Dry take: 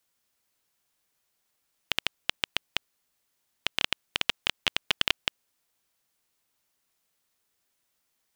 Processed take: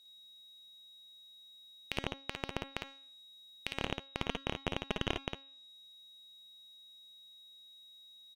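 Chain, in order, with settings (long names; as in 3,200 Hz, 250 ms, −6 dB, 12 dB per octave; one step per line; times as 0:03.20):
treble cut that deepens with the level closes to 1,500 Hz, closed at −34 dBFS
parametric band 1,500 Hz −10.5 dB 2.2 octaves
hum removal 273.3 Hz, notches 24
brickwall limiter −18 dBFS, peak gain reduction 9 dB
leveller curve on the samples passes 1
steady tone 3,800 Hz −62 dBFS
on a send: ambience of single reflections 55 ms −4.5 dB, 66 ms −16 dB
on the sum: level +3.5 dB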